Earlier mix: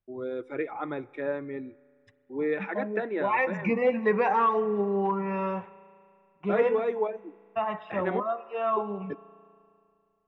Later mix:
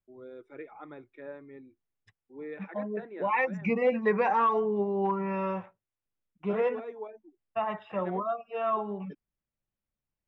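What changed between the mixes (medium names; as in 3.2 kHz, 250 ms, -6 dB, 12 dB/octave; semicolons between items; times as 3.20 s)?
first voice -11.5 dB; reverb: off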